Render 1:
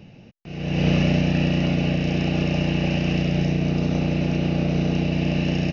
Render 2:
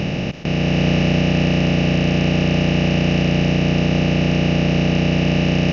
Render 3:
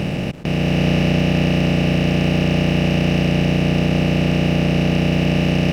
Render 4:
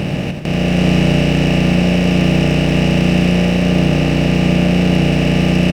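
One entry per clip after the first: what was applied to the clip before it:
compressor on every frequency bin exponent 0.2
slack as between gear wheels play −33.5 dBFS
stylus tracing distortion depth 0.042 ms; loudspeakers that aren't time-aligned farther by 29 metres −7 dB, 96 metres −12 dB; level +2.5 dB

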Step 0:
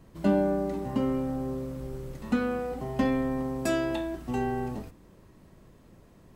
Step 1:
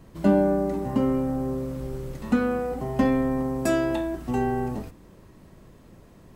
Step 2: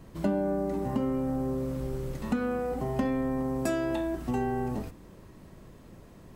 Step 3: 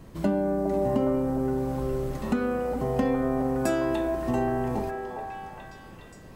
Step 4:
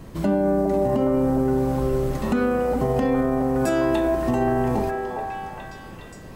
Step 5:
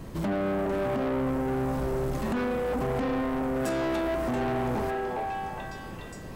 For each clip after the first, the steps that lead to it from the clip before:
dynamic equaliser 3,500 Hz, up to −5 dB, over −52 dBFS, Q 0.9; level +4.5 dB
downward compressor 3 to 1, threshold −27 dBFS, peak gain reduction 10 dB
echo through a band-pass that steps 412 ms, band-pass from 560 Hz, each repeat 0.7 octaves, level −1 dB; level +2.5 dB
brickwall limiter −19 dBFS, peak gain reduction 7 dB; level +6.5 dB
soft clipping −25.5 dBFS, distortion −8 dB

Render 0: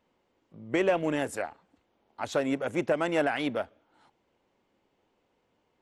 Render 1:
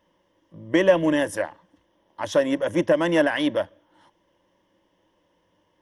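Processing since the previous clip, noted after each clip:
EQ curve with evenly spaced ripples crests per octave 1.2, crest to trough 11 dB
level +4.5 dB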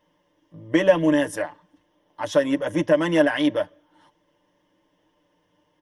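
comb filter 6.7 ms
level −1.5 dB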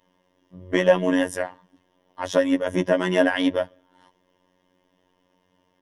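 phases set to zero 91.1 Hz
level +2.5 dB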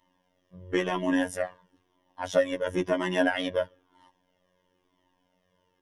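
flanger whose copies keep moving one way falling 1 Hz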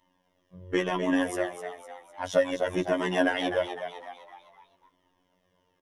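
echo with shifted repeats 253 ms, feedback 47%, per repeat +82 Hz, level −9.5 dB

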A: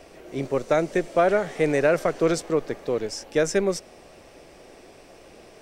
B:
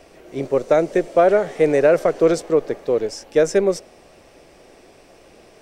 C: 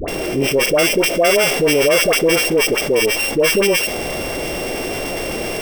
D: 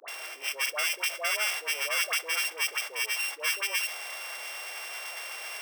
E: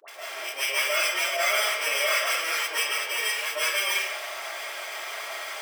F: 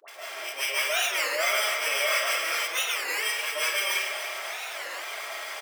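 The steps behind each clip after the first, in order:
dynamic equaliser 490 Hz, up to +7 dB, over −34 dBFS, Q 0.96
samples sorted by size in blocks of 16 samples; all-pass dispersion highs, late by 80 ms, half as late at 870 Hz; envelope flattener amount 70%; level −1 dB
four-pole ladder high-pass 870 Hz, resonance 25%; level −5.5 dB
notch comb filter 250 Hz; comb and all-pass reverb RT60 1 s, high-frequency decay 0.7×, pre-delay 105 ms, DRR −9.5 dB; every ending faded ahead of time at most 210 dB per second; level −1.5 dB
repeating echo 289 ms, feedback 59%, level −11 dB; wow of a warped record 33 1/3 rpm, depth 250 cents; level −1.5 dB

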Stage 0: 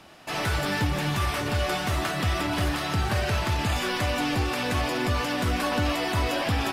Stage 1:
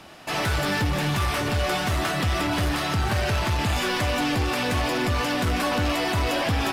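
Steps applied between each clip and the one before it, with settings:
soft clipping −22.5 dBFS, distortion −15 dB
level +4.5 dB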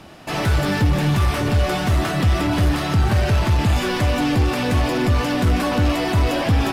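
low-shelf EQ 470 Hz +8.5 dB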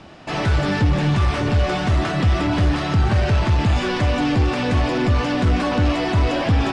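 Bessel low-pass filter 5,600 Hz, order 8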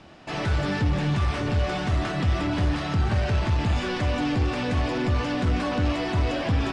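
hum removal 52.02 Hz, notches 27
level −5.5 dB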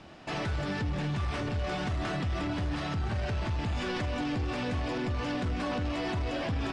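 brickwall limiter −24 dBFS, peak gain reduction 9.5 dB
level −1.5 dB

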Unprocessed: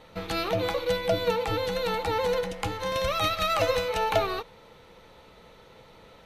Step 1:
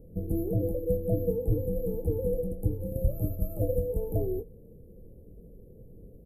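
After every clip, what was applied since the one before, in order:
inverse Chebyshev band-stop filter 1,000–6,000 Hz, stop band 50 dB
low-shelf EQ 120 Hz +10 dB
double-tracking delay 24 ms −10 dB
level +2 dB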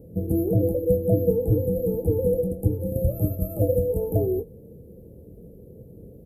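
high-pass filter 72 Hz
level +7.5 dB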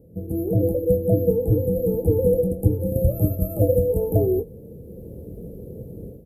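automatic gain control gain up to 13.5 dB
level −5 dB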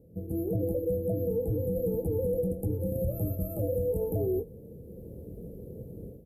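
brickwall limiter −15.5 dBFS, peak gain reduction 9 dB
level −6 dB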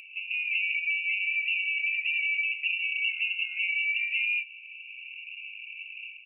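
voice inversion scrambler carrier 2,800 Hz
dynamic equaliser 970 Hz, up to +6 dB, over −57 dBFS, Q 3.3
upward compression, threshold −40 dBFS

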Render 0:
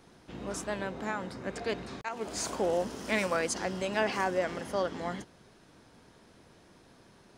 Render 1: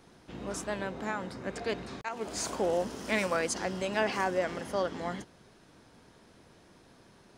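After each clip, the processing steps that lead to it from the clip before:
no processing that can be heard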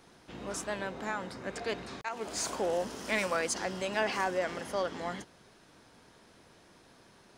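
low-shelf EQ 460 Hz −5.5 dB
in parallel at −9 dB: soft clipping −33 dBFS, distortion −7 dB
on the sum: level −1 dB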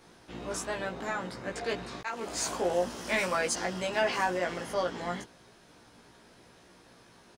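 double-tracking delay 17 ms −2 dB

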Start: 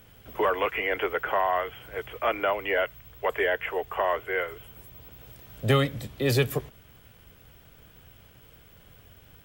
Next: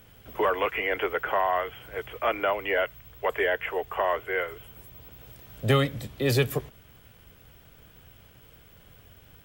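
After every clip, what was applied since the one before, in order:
no processing that can be heard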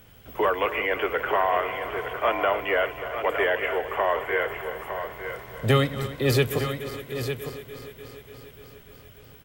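feedback delay that plays each chunk backwards 147 ms, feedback 85%, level −14 dB
single-tap delay 908 ms −9 dB
level +1.5 dB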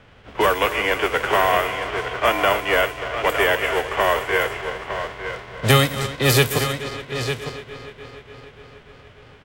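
spectral envelope flattened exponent 0.6
low-pass that shuts in the quiet parts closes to 2,400 Hz, open at −20 dBFS
level +5 dB

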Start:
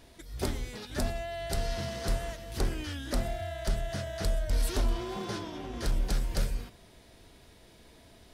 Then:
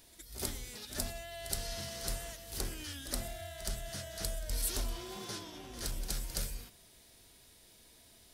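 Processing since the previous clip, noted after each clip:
first-order pre-emphasis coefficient 0.8
backwards echo 70 ms −13 dB
level +4 dB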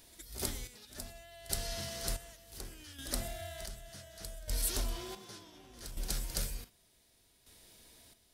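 square-wave tremolo 0.67 Hz, depth 65%, duty 45%
level +1 dB

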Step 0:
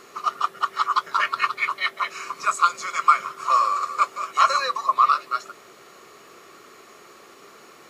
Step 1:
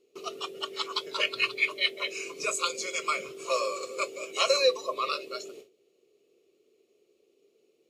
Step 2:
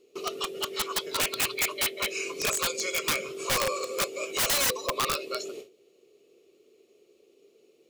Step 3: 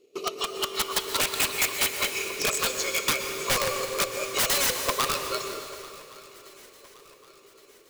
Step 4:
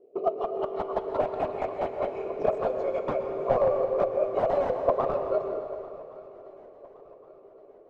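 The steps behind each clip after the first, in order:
noise reduction from a noise print of the clip's start 7 dB; noise gate with hold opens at −42 dBFS; drawn EQ curve 190 Hz 0 dB, 440 Hz +14 dB, 1,000 Hz −17 dB, 1,700 Hz −18 dB, 2,600 Hz +3 dB, 4,900 Hz −1 dB; level +2.5 dB
in parallel at −1.5 dB: downward compressor 8 to 1, threshold −38 dBFS, peak gain reduction 19.5 dB; on the sum: wrap-around overflow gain 20.5 dB; level +1 dB
transient designer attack +4 dB, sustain −3 dB; feedback echo with a long and a short gap by turns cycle 1,119 ms, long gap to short 3 to 1, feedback 46%, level −21.5 dB; dense smooth reverb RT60 2.4 s, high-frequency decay 0.95×, pre-delay 105 ms, DRR 6 dB
low-pass with resonance 680 Hz, resonance Q 4.9

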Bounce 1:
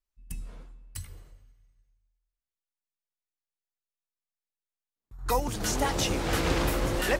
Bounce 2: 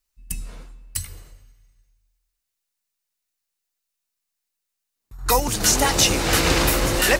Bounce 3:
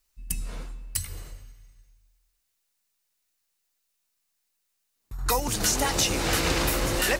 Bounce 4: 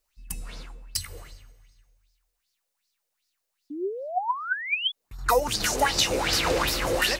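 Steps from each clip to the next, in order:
high-shelf EQ 2,100 Hz +9 dB; notch filter 3,300 Hz, Q 19; level +6 dB
downward compressor 2 to 1, threshold −35 dBFS, peak gain reduction 12 dB; level +4.5 dB
sound drawn into the spectrogram rise, 0:03.70–0:04.92, 280–3,500 Hz −30 dBFS; auto-filter bell 2.6 Hz 470–5,100 Hz +15 dB; level −4.5 dB

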